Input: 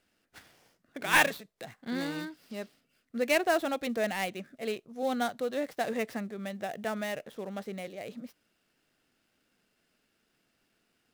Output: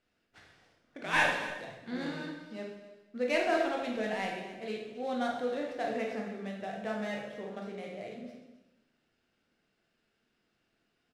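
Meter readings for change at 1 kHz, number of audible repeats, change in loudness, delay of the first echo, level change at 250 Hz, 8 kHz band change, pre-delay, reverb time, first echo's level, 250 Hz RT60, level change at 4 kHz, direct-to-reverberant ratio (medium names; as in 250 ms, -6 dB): -1.5 dB, 1, -2.5 dB, 269 ms, -2.0 dB, -9.5 dB, 14 ms, 1.0 s, -15.5 dB, 1.2 s, -3.5 dB, -1.5 dB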